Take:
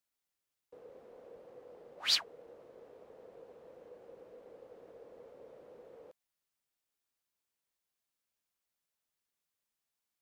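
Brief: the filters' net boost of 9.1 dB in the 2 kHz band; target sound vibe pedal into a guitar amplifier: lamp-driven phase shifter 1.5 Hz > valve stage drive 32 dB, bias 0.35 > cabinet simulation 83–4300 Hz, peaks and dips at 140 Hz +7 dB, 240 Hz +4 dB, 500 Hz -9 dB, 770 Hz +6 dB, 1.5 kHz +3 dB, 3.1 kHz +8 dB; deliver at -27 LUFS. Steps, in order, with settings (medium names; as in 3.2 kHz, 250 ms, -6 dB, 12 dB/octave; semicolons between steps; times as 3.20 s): peaking EQ 2 kHz +9 dB; lamp-driven phase shifter 1.5 Hz; valve stage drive 32 dB, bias 0.35; cabinet simulation 83–4300 Hz, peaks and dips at 140 Hz +7 dB, 240 Hz +4 dB, 500 Hz -9 dB, 770 Hz +6 dB, 1.5 kHz +3 dB, 3.1 kHz +8 dB; trim +10 dB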